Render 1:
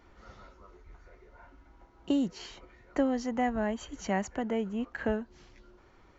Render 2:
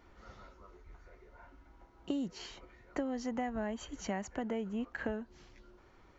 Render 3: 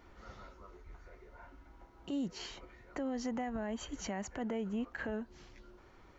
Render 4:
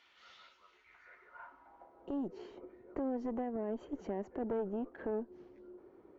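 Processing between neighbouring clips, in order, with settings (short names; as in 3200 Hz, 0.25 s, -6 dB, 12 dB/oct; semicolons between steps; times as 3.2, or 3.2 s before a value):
compressor 6:1, threshold -30 dBFS, peak gain reduction 8 dB; gain -2 dB
limiter -31.5 dBFS, peak gain reduction 8.5 dB; gain +2 dB
band-pass sweep 3200 Hz -> 380 Hz, 0.69–2.28; added harmonics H 2 -10 dB, 5 -21 dB, 6 -26 dB, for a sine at -30.5 dBFS; gain +5 dB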